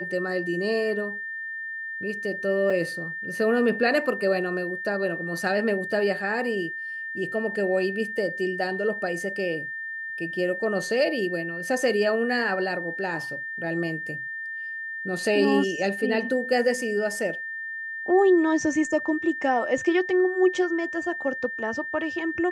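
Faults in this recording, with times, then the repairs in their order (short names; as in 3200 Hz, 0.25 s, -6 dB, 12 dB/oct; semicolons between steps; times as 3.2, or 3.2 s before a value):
tone 1800 Hz -31 dBFS
2.7 gap 4.2 ms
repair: notch 1800 Hz, Q 30; interpolate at 2.7, 4.2 ms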